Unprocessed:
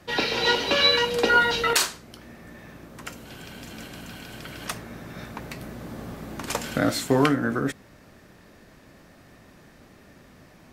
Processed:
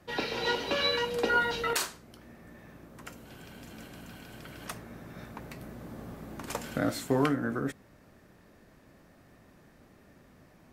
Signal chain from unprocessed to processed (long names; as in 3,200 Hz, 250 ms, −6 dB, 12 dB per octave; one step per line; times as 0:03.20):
parametric band 4,200 Hz −4.5 dB 2.4 octaves
level −6 dB